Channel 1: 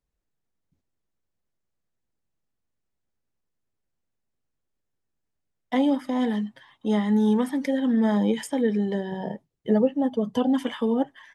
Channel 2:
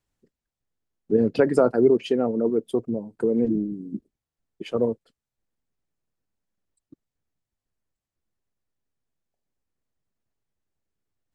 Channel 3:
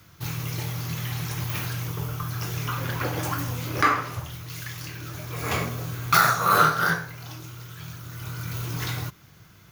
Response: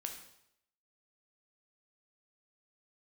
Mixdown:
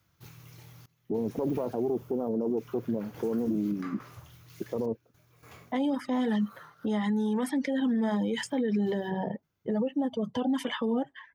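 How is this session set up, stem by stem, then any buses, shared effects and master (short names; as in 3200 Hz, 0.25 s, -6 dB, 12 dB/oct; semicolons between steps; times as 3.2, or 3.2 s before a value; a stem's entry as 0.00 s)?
-6.5 dB, 0.00 s, bus A, no send, reverb removal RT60 0.51 s; low-pass opened by the level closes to 740 Hz, open at -21 dBFS; AGC gain up to 12.5 dB
+1.5 dB, 0.00 s, bus A, no send, self-modulated delay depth 0.23 ms; steep low-pass 1100 Hz
-15.5 dB, 0.00 s, no bus, no send, random-step tremolo, depth 95%; auto duck -12 dB, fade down 0.80 s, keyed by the first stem
bus A: 0.0 dB, HPF 54 Hz; limiter -16 dBFS, peak gain reduction 11.5 dB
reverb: off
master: limiter -21.5 dBFS, peak gain reduction 6 dB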